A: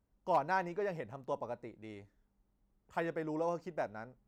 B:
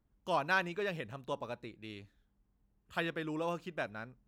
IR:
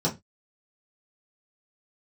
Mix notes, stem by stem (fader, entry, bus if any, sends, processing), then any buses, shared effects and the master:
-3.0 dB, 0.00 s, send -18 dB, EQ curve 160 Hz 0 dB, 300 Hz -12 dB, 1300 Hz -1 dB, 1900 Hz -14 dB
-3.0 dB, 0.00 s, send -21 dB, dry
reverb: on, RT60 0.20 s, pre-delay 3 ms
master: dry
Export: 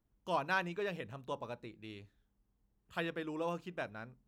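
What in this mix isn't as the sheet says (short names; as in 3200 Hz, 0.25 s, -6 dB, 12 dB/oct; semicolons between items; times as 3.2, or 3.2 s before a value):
stem A -3.0 dB -> -12.5 dB; reverb return -8.5 dB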